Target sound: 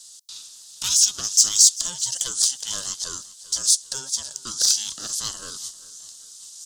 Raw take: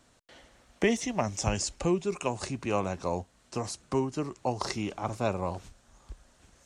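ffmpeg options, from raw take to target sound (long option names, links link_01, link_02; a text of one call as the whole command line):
ffmpeg -i in.wav -filter_complex "[0:a]highpass=620,asplit=2[link_01][link_02];[link_02]highpass=frequency=720:poles=1,volume=17dB,asoftclip=type=tanh:threshold=-13dB[link_03];[link_01][link_03]amix=inputs=2:normalize=0,lowpass=frequency=4400:poles=1,volume=-6dB,aeval=exprs='val(0)*sin(2*PI*530*n/s)':channel_layout=same,aexciter=amount=15.6:drive=9.8:freq=3700,asplit=2[link_04][link_05];[link_05]aecho=0:1:394|788|1182:0.112|0.0482|0.0207[link_06];[link_04][link_06]amix=inputs=2:normalize=0,volume=-11.5dB" out.wav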